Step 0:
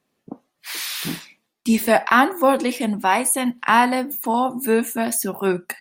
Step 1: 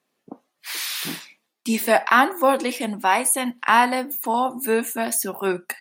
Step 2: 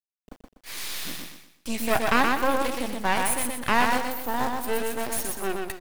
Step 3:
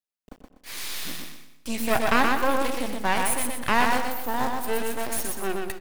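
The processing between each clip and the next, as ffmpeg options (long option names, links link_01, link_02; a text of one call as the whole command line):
ffmpeg -i in.wav -af "highpass=frequency=350:poles=1" out.wav
ffmpeg -i in.wav -af "acrusher=bits=5:dc=4:mix=0:aa=0.000001,aecho=1:1:123|246|369|492:0.668|0.227|0.0773|0.0263,aeval=exprs='max(val(0),0)':channel_layout=same,volume=-3dB" out.wav
ffmpeg -i in.wav -filter_complex "[0:a]asplit=2[link_01][link_02];[link_02]adelay=97,lowpass=frequency=1800:poles=1,volume=-12.5dB,asplit=2[link_03][link_04];[link_04]adelay=97,lowpass=frequency=1800:poles=1,volume=0.53,asplit=2[link_05][link_06];[link_06]adelay=97,lowpass=frequency=1800:poles=1,volume=0.53,asplit=2[link_07][link_08];[link_08]adelay=97,lowpass=frequency=1800:poles=1,volume=0.53,asplit=2[link_09][link_10];[link_10]adelay=97,lowpass=frequency=1800:poles=1,volume=0.53[link_11];[link_01][link_03][link_05][link_07][link_09][link_11]amix=inputs=6:normalize=0" out.wav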